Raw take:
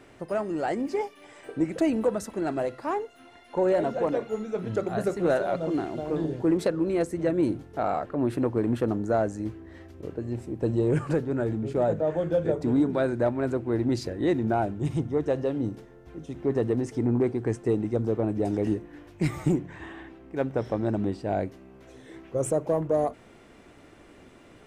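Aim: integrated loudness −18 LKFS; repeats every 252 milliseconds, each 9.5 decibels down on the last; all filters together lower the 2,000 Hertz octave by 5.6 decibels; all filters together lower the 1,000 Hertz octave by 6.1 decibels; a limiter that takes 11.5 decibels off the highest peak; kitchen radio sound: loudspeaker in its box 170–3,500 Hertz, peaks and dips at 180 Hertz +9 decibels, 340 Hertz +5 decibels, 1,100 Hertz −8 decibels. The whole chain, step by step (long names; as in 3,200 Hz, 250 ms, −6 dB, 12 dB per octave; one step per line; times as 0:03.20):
parametric band 1,000 Hz −8 dB
parametric band 2,000 Hz −3 dB
brickwall limiter −26.5 dBFS
loudspeaker in its box 170–3,500 Hz, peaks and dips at 180 Hz +9 dB, 340 Hz +5 dB, 1,100 Hz −8 dB
repeating echo 252 ms, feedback 33%, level −9.5 dB
level +15 dB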